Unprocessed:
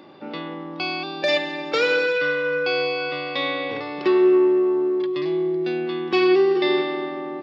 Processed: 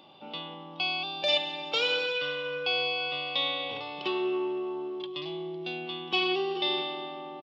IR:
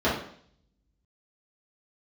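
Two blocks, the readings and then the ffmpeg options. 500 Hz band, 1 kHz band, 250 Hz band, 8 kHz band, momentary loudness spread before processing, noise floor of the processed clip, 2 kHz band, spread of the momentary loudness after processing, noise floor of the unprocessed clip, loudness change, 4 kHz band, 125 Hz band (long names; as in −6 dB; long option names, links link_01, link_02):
−13.0 dB, −6.0 dB, −14.0 dB, can't be measured, 11 LU, −44 dBFS, −8.0 dB, 10 LU, −34 dBFS, −8.5 dB, +1.5 dB, −8.5 dB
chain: -af "firequalizer=gain_entry='entry(170,0);entry(320,-7);entry(780,5);entry(1800,-9);entry(3000,14);entry(4400,3)':delay=0.05:min_phase=1,volume=-8.5dB"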